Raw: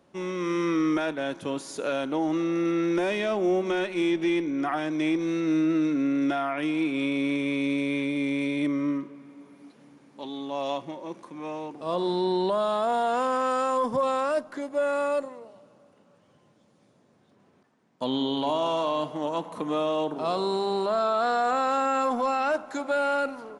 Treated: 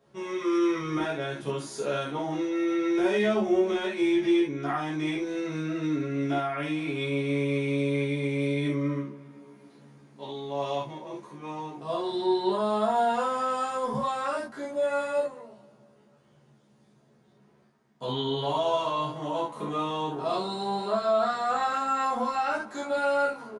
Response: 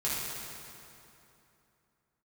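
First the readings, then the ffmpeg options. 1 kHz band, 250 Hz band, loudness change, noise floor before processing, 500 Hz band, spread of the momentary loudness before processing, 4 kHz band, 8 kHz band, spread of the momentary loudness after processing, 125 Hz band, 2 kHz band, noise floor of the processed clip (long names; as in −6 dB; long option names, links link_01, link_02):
−1.0 dB, −2.5 dB, −1.5 dB, −62 dBFS, −1.0 dB, 9 LU, −0.5 dB, −1.0 dB, 9 LU, +5.0 dB, −1.5 dB, −62 dBFS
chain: -filter_complex "[0:a]asplit=2[link_01][link_02];[link_02]adelay=14,volume=-5dB[link_03];[link_01][link_03]amix=inputs=2:normalize=0[link_04];[1:a]atrim=start_sample=2205,atrim=end_sample=3528[link_05];[link_04][link_05]afir=irnorm=-1:irlink=0,volume=-6dB"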